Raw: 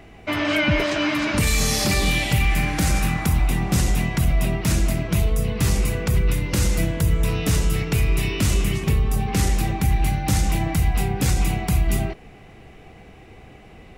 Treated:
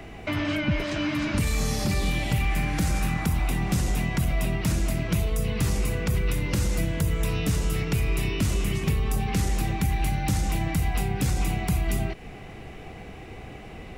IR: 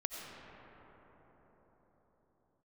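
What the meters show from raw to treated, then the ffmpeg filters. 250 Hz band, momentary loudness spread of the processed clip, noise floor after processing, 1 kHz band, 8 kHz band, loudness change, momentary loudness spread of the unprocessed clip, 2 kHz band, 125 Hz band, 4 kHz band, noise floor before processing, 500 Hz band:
-3.5 dB, 15 LU, -42 dBFS, -4.5 dB, -7.0 dB, -5.0 dB, 3 LU, -6.0 dB, -4.5 dB, -7.0 dB, -45 dBFS, -5.0 dB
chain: -filter_complex "[0:a]acrossover=split=220|1500[s0][s1][s2];[s0]acompressor=threshold=0.0398:ratio=4[s3];[s1]acompressor=threshold=0.0126:ratio=4[s4];[s2]acompressor=threshold=0.01:ratio=4[s5];[s3][s4][s5]amix=inputs=3:normalize=0,volume=1.58"

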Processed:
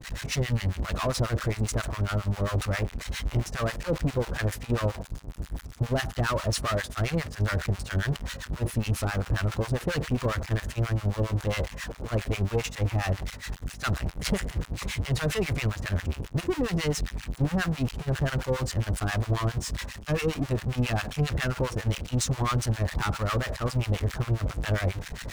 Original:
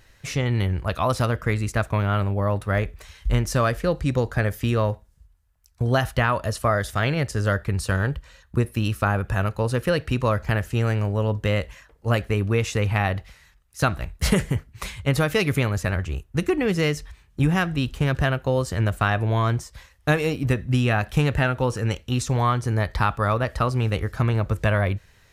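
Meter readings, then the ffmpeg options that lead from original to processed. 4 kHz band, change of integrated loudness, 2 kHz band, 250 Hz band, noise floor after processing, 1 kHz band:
-2.0 dB, -5.5 dB, -6.0 dB, -5.5 dB, -44 dBFS, -8.0 dB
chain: -filter_complex "[0:a]aeval=exprs='val(0)+0.5*0.0596*sgn(val(0))':c=same,acrossover=split=9800[s0][s1];[s1]acompressor=threshold=0.00501:ratio=4:attack=1:release=60[s2];[s0][s2]amix=inputs=2:normalize=0,asoftclip=type=tanh:threshold=0.1,aeval=exprs='val(0)+0.0224*(sin(2*PI*50*n/s)+sin(2*PI*2*50*n/s)/2+sin(2*PI*3*50*n/s)/3+sin(2*PI*4*50*n/s)/4+sin(2*PI*5*50*n/s)/5)':c=same,acrossover=split=870[s3][s4];[s3]aeval=exprs='val(0)*(1-1/2+1/2*cos(2*PI*7.4*n/s))':c=same[s5];[s4]aeval=exprs='val(0)*(1-1/2-1/2*cos(2*PI*7.4*n/s))':c=same[s6];[s5][s6]amix=inputs=2:normalize=0,agate=range=0.0224:threshold=0.0398:ratio=3:detection=peak,volume=1.12"

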